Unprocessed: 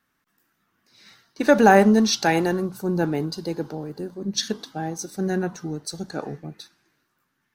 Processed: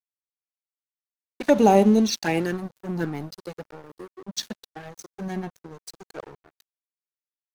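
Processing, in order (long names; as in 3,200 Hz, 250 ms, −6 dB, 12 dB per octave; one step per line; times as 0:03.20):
flanger swept by the level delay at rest 4.1 ms, full sweep at −14.5 dBFS
dead-zone distortion −36 dBFS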